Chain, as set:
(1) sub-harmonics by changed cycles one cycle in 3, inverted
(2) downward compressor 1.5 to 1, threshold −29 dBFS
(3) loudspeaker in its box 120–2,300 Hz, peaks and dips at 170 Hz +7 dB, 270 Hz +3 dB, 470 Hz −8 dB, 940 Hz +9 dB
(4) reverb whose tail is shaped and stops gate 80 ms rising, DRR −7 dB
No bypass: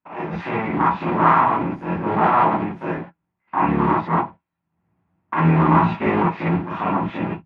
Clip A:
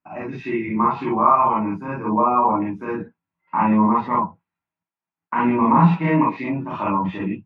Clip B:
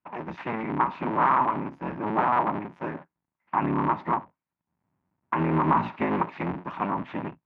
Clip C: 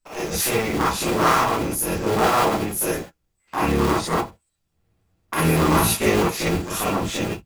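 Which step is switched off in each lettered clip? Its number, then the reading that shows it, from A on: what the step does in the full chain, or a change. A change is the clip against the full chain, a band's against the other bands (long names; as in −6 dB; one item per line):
1, 2 kHz band −4.0 dB
4, 125 Hz band −3.5 dB
3, 500 Hz band +5.5 dB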